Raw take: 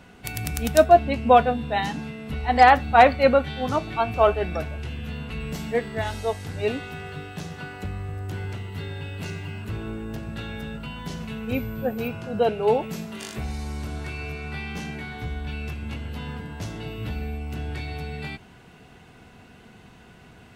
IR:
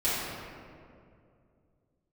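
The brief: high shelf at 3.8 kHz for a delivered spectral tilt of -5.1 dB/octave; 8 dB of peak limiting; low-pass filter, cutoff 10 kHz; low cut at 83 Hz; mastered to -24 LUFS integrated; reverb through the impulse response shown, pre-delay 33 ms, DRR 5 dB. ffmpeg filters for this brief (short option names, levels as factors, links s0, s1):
-filter_complex "[0:a]highpass=83,lowpass=10000,highshelf=f=3800:g=-4,alimiter=limit=0.299:level=0:latency=1,asplit=2[s0][s1];[1:a]atrim=start_sample=2205,adelay=33[s2];[s1][s2]afir=irnorm=-1:irlink=0,volume=0.15[s3];[s0][s3]amix=inputs=2:normalize=0,volume=1.33"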